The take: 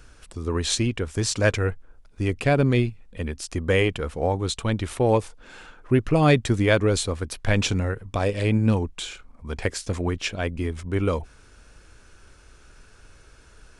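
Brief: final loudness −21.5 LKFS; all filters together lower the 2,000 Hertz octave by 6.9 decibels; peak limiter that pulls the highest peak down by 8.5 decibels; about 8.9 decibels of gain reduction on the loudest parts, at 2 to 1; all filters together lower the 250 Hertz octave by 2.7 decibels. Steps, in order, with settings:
parametric band 250 Hz −3.5 dB
parametric band 2,000 Hz −9 dB
downward compressor 2 to 1, threshold −32 dBFS
level +14 dB
brickwall limiter −10.5 dBFS

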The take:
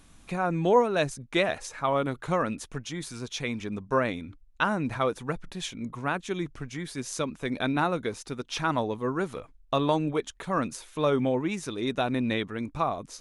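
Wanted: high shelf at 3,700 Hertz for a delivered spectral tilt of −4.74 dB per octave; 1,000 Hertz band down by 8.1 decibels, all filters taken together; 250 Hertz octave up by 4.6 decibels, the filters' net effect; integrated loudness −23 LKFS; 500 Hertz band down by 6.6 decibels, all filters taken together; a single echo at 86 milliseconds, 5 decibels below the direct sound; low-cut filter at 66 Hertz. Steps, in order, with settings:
high-pass filter 66 Hz
parametric band 250 Hz +8.5 dB
parametric band 500 Hz −9 dB
parametric band 1,000 Hz −9 dB
high-shelf EQ 3,700 Hz +7.5 dB
single-tap delay 86 ms −5 dB
level +5 dB

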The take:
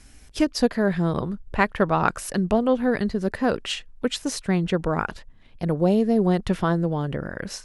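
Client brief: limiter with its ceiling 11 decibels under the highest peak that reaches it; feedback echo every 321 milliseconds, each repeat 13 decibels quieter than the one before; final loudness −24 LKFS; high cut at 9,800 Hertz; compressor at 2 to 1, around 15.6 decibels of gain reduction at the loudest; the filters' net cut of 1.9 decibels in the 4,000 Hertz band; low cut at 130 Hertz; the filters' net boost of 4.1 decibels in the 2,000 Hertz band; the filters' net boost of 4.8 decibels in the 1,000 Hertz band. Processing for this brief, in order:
high-pass filter 130 Hz
low-pass filter 9,800 Hz
parametric band 1,000 Hz +5.5 dB
parametric band 2,000 Hz +4 dB
parametric band 4,000 Hz −4.5 dB
downward compressor 2 to 1, threshold −40 dBFS
brickwall limiter −26 dBFS
repeating echo 321 ms, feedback 22%, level −13 dB
level +13 dB

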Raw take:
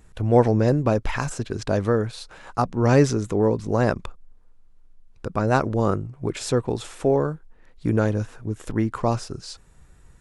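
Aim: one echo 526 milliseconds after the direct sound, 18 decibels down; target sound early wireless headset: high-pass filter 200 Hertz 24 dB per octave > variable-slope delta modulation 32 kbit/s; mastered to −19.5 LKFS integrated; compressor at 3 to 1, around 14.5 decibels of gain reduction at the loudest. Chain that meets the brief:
downward compressor 3 to 1, threshold −31 dBFS
high-pass filter 200 Hz 24 dB per octave
single-tap delay 526 ms −18 dB
variable-slope delta modulation 32 kbit/s
level +16.5 dB

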